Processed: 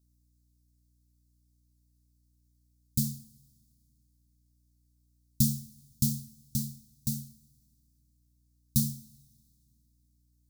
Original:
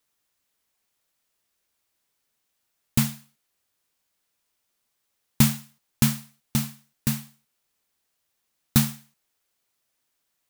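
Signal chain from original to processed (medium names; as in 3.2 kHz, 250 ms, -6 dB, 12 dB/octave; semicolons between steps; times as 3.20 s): inverse Chebyshev band-stop 460–2500 Hz, stop band 40 dB; peaking EQ 570 Hz -11.5 dB 1.9 oct; hum 60 Hz, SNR 32 dB; two-slope reverb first 0.55 s, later 2.3 s, from -17 dB, DRR 12 dB; trim -5 dB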